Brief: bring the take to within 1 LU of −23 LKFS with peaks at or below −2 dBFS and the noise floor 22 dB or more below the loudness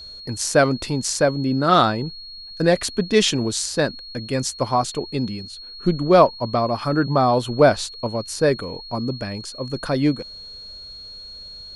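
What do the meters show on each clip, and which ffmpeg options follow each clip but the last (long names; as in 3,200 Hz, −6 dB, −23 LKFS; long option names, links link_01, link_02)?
interfering tone 4,300 Hz; level of the tone −36 dBFS; integrated loudness −20.5 LKFS; sample peak −1.0 dBFS; target loudness −23.0 LKFS
→ -af "bandreject=frequency=4300:width=30"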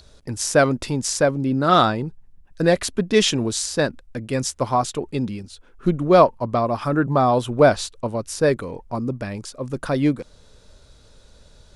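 interfering tone none found; integrated loudness −21.0 LKFS; sample peak −1.5 dBFS; target loudness −23.0 LKFS
→ -af "volume=-2dB"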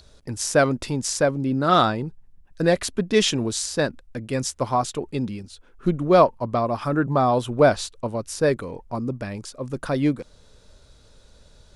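integrated loudness −23.0 LKFS; sample peak −3.5 dBFS; background noise floor −53 dBFS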